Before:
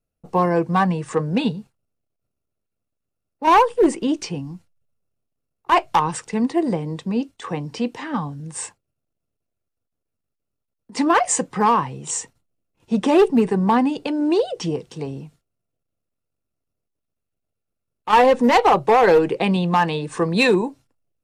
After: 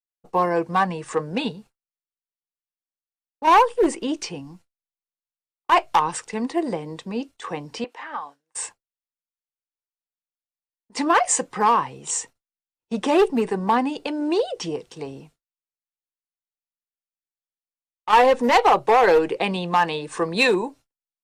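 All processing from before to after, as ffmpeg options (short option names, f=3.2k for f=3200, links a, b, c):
-filter_complex "[0:a]asettb=1/sr,asplit=3[a][b][c];[a]atrim=end=7.844[d];[b]atrim=start=7.84:end=8.55,asetpts=PTS-STARTPTS,afade=t=in:d=0.004:c=qsin,afade=t=out:st=0.706:d=0.004:c=qsin,highpass=700,acrossover=split=2700[e][f];[f]acompressor=threshold=-54dB:ratio=4:attack=1:release=60[g];[e][g]amix=inputs=2:normalize=0,highshelf=f=3.5k:g=-4[h];[c]atrim=start=8.546[i];[d][h]acrossfade=d=0.004:c1=hsin:c2=qsin[j];[j][i]acrossfade=d=0.004:c1=qsin:c2=hsin,agate=range=-33dB:threshold=-37dB:ratio=3:detection=peak,equalizer=f=140:w=0.64:g=-10"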